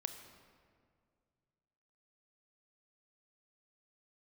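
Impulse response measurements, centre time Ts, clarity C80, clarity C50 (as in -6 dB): 25 ms, 9.0 dB, 8.5 dB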